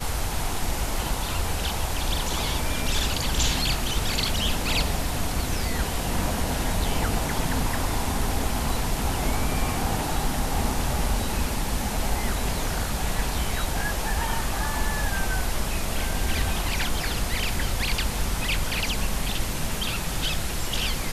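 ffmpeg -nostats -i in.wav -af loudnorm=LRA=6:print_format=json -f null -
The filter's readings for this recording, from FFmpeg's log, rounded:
"input_i" : "-26.9",
"input_tp" : "-10.6",
"input_lra" : "2.1",
"input_thresh" : "-36.9",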